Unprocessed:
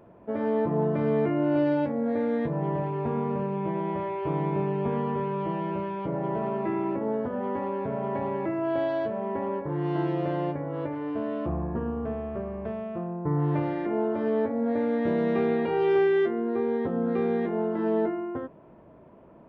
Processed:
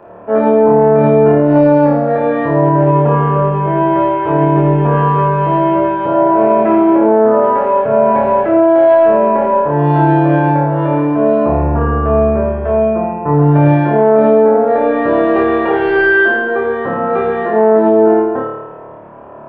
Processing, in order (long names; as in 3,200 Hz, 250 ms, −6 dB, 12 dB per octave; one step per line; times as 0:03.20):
three-way crossover with the lows and the highs turned down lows −12 dB, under 510 Hz, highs −17 dB, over 2,400 Hz
notch filter 2,100 Hz, Q 9.7
soft clipping −20.5 dBFS, distortion −26 dB
on a send: flutter between parallel walls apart 4.7 metres, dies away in 1.1 s
on the sum: boost into a limiter +18.5 dB
level −1 dB